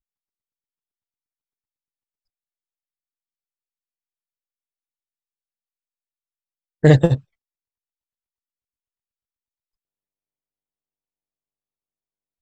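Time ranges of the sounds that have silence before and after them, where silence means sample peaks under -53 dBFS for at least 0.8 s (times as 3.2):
6.83–7.23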